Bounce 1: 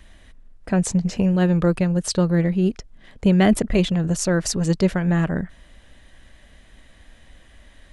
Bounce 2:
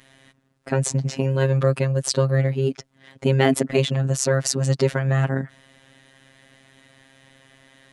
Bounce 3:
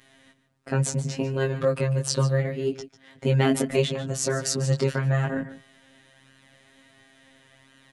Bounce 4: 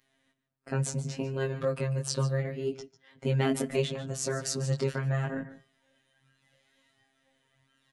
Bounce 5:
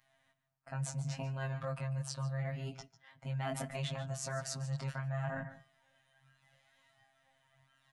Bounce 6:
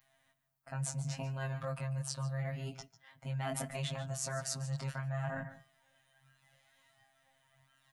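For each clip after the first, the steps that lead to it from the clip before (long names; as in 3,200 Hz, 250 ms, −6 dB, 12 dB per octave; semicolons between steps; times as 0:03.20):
high-pass filter 94 Hz 24 dB per octave; phases set to zero 134 Hz; level +3.5 dB
chorus effect 0.71 Hz, delay 17.5 ms, depth 4.2 ms; single-tap delay 146 ms −14.5 dB
noise reduction from a noise print of the clip's start 10 dB; on a send at −19 dB: convolution reverb RT60 0.35 s, pre-delay 3 ms; on the sum: level −6 dB
drawn EQ curve 150 Hz 0 dB, 420 Hz −21 dB, 670 Hz +4 dB, 3,500 Hz −4 dB; reversed playback; downward compressor 6 to 1, threshold −36 dBFS, peak gain reduction 11.5 dB; reversed playback; level +1 dB
high-shelf EQ 10,000 Hz +12 dB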